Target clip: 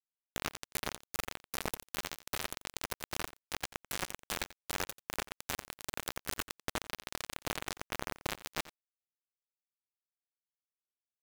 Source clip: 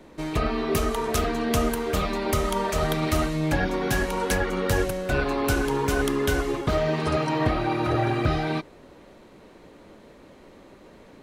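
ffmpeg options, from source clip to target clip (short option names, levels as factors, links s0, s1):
-af "lowshelf=f=310:g=-3.5,areverse,acompressor=threshold=0.0141:ratio=5,areverse,acrusher=bits=4:mix=0:aa=0.000001,aecho=1:1:88:0.133,volume=1.68"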